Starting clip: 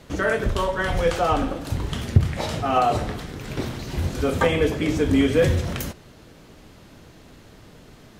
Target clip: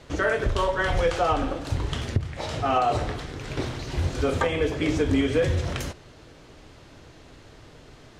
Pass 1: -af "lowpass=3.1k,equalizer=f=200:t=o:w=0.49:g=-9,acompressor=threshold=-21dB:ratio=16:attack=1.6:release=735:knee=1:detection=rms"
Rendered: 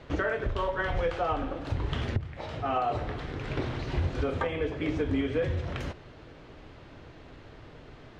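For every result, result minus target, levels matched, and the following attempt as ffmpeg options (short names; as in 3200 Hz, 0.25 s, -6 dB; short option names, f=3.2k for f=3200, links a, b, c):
8000 Hz band -11.0 dB; compressor: peak gain reduction +6 dB
-af "lowpass=8k,equalizer=f=200:t=o:w=0.49:g=-9,acompressor=threshold=-21dB:ratio=16:attack=1.6:release=735:knee=1:detection=rms"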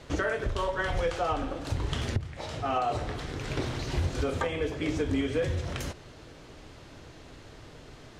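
compressor: peak gain reduction +6 dB
-af "lowpass=8k,equalizer=f=200:t=o:w=0.49:g=-9,acompressor=threshold=-14.5dB:ratio=16:attack=1.6:release=735:knee=1:detection=rms"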